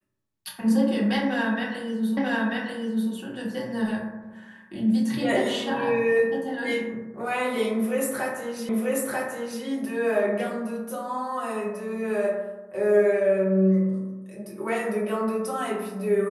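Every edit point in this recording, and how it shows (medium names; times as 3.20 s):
2.17 s: repeat of the last 0.94 s
8.69 s: repeat of the last 0.94 s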